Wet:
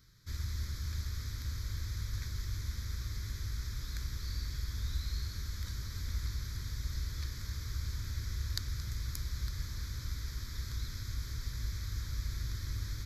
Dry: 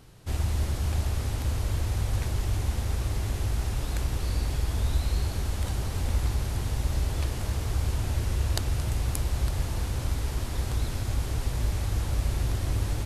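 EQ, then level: amplifier tone stack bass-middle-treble 5-5-5; static phaser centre 2.8 kHz, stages 6; +4.0 dB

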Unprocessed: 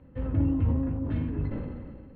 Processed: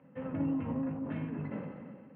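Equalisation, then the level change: Chebyshev band-pass 170–2700 Hz, order 3; peaking EQ 330 Hz -6.5 dB 0.78 oct; hum notches 60/120/180/240/300/360/420/480/540 Hz; +1.0 dB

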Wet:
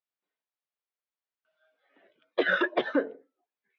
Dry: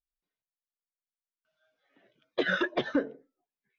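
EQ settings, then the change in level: high-pass 350 Hz 12 dB/octave; distance through air 230 m; +5.0 dB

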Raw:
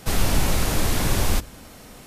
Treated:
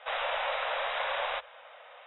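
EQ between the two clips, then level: elliptic high-pass 540 Hz, stop band 40 dB; brick-wall FIR low-pass 3.9 kHz; distance through air 130 m; 0.0 dB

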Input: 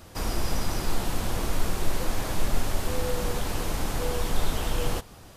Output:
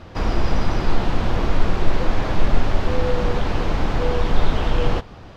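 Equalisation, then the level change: distance through air 220 m; +8.5 dB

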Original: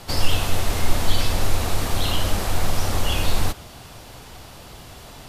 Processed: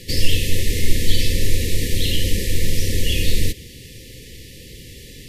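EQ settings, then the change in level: brick-wall FIR band-stop 550–1700 Hz; +3.0 dB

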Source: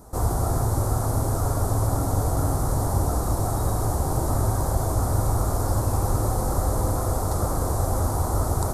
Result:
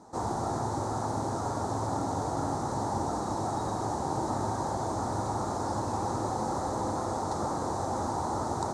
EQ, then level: cabinet simulation 150–7400 Hz, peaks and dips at 220 Hz +5 dB, 330 Hz +4 dB, 880 Hz +9 dB, 1.8 kHz +4 dB, 3.9 kHz +5 dB, 6.2 kHz +3 dB; -6.0 dB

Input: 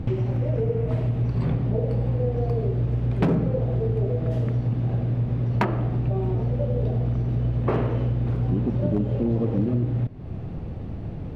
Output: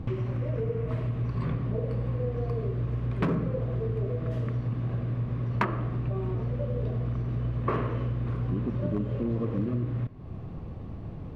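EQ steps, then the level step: dynamic bell 1.7 kHz, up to +5 dB, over -46 dBFS, Q 0.8; dynamic bell 800 Hz, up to -7 dB, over -48 dBFS, Q 3.5; peaking EQ 1.1 kHz +9 dB 0.25 oct; -6.0 dB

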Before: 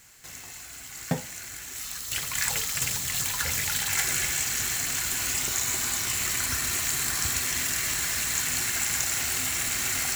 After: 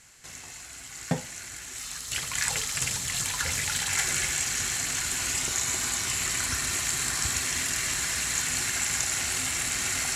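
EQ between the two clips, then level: low-pass 11 kHz 24 dB/octave; 0.0 dB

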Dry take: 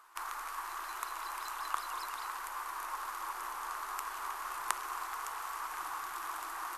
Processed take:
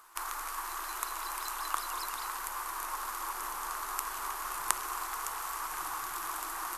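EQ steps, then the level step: bass shelf 370 Hz +10.5 dB; treble shelf 4.4 kHz +10 dB; 0.0 dB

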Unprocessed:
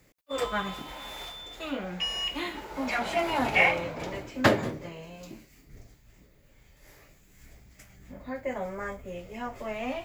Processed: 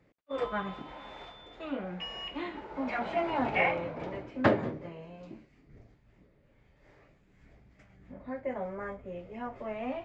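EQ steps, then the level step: tape spacing loss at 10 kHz 33 dB; bass shelf 72 Hz -10.5 dB; 0.0 dB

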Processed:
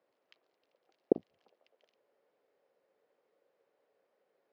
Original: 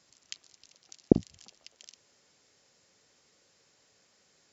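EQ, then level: band-pass filter 500 Hz, Q 2.1; distance through air 330 m; tilt EQ +3 dB/octave; +4.0 dB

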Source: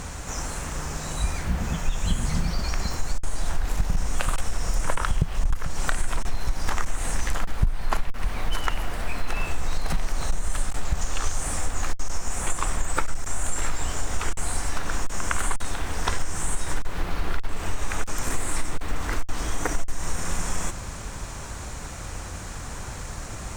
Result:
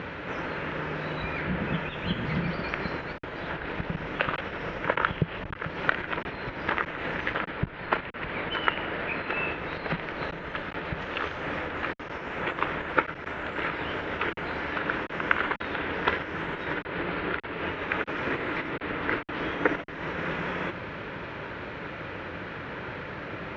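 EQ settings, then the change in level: distance through air 180 m; cabinet simulation 220–3100 Hz, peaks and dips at 230 Hz -6 dB, 750 Hz -10 dB, 1.1 kHz -7 dB; +8.0 dB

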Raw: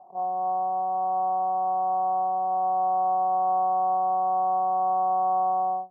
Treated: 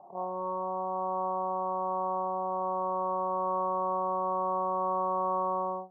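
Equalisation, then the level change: distance through air 390 m; band-stop 740 Hz, Q 12; +5.0 dB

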